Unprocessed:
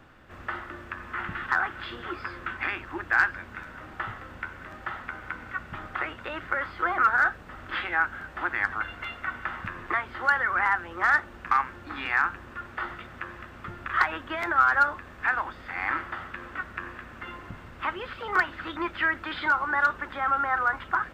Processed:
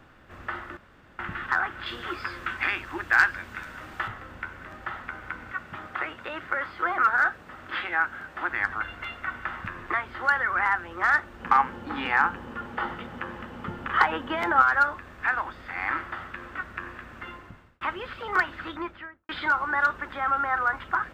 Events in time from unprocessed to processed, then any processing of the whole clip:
0:00.77–0:01.19: fill with room tone
0:01.86–0:04.08: high-shelf EQ 2,500 Hz +9 dB
0:05.52–0:08.50: high-pass filter 140 Hz 6 dB per octave
0:11.40–0:14.62: hollow resonant body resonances 220/470/830/3,000 Hz, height 11 dB, ringing for 25 ms
0:17.25–0:17.81: fade out linear
0:18.60–0:19.29: fade out and dull

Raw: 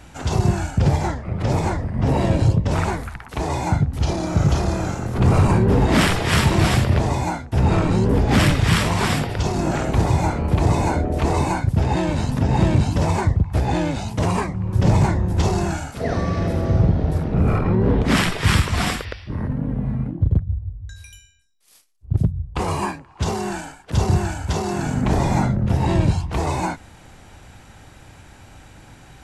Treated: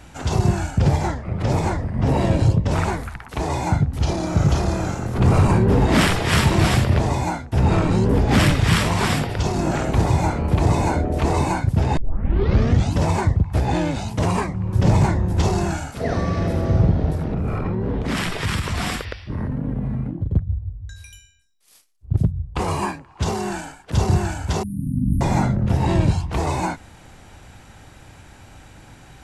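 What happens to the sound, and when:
0:11.97: tape start 0.96 s
0:17.12–0:20.34: downward compressor, threshold −19 dBFS
0:24.63–0:25.21: linear-phase brick-wall band-stop 300–8,900 Hz

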